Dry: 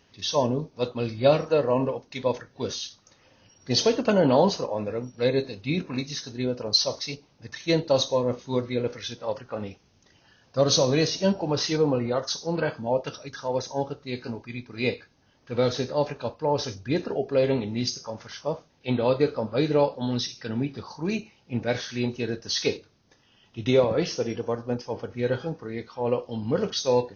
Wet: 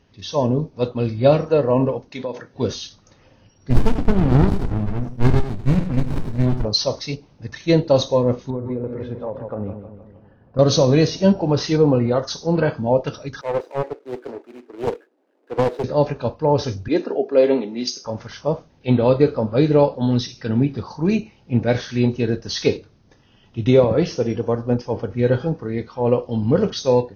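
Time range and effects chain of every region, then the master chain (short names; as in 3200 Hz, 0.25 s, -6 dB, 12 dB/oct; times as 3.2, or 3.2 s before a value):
2.1–2.54 HPF 190 Hz + compressor 5:1, threshold -30 dBFS
3.7–6.65 bell 3500 Hz +6 dB 2 oct + echo 94 ms -9.5 dB + running maximum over 65 samples
8.5–10.59 LPF 1100 Hz + feedback echo 0.155 s, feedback 53%, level -12 dB + compressor, threshold -30 dBFS
13.41–15.84 median filter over 41 samples + steep high-pass 320 Hz + Doppler distortion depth 0.47 ms
16.88–18.05 HPF 250 Hz 24 dB/oct + three-band expander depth 40%
whole clip: tilt -2 dB/oct; AGC gain up to 5.5 dB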